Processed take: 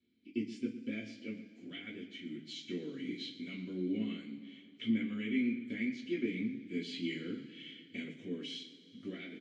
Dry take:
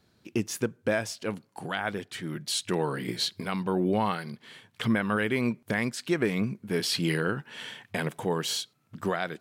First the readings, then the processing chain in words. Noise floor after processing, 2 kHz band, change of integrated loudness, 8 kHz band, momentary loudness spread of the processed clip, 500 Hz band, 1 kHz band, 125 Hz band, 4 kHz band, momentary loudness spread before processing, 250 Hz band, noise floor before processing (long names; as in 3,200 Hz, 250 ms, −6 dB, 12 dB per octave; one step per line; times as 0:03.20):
−59 dBFS, −13.0 dB, −10.0 dB, below −20 dB, 12 LU, −14.5 dB, below −30 dB, −15.5 dB, −12.0 dB, 10 LU, −5.5 dB, −67 dBFS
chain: hearing-aid frequency compression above 3,800 Hz 1.5 to 1
formant filter i
parametric band 1,500 Hz −7 dB 1.4 octaves
slap from a distant wall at 20 metres, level −14 dB
coupled-rooms reverb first 0.24 s, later 2.8 s, from −22 dB, DRR −5 dB
level −2 dB